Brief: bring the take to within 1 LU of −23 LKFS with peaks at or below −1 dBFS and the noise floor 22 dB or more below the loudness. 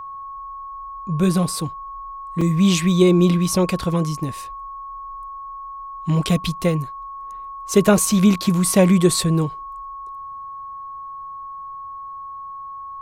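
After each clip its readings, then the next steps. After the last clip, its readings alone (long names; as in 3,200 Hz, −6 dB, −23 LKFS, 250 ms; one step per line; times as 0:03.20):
number of dropouts 1; longest dropout 4.0 ms; interfering tone 1,100 Hz; level of the tone −31 dBFS; integrated loudness −18.5 LKFS; sample peak −2.0 dBFS; target loudness −23.0 LKFS
→ repair the gap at 0:02.41, 4 ms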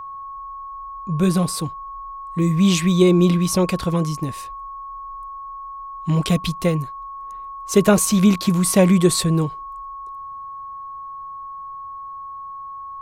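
number of dropouts 0; interfering tone 1,100 Hz; level of the tone −31 dBFS
→ notch filter 1,100 Hz, Q 30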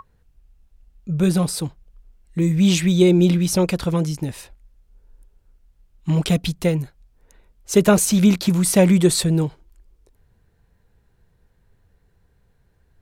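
interfering tone none found; integrated loudness −18.5 LKFS; sample peak −2.0 dBFS; target loudness −23.0 LKFS
→ level −4.5 dB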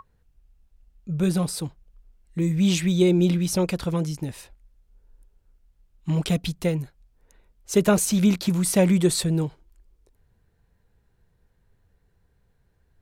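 integrated loudness −23.0 LKFS; sample peak −6.5 dBFS; background noise floor −66 dBFS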